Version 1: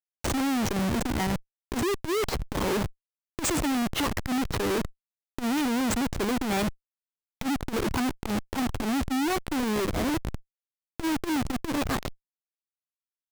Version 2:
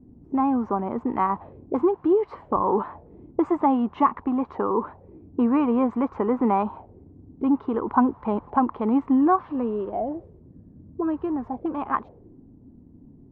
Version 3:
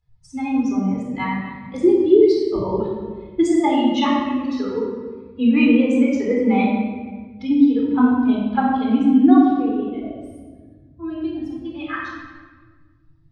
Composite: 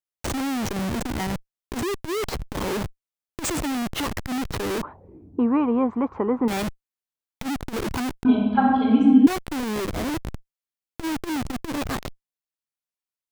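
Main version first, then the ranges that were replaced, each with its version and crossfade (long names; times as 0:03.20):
1
0:04.83–0:06.48: punch in from 2
0:08.25–0:09.27: punch in from 3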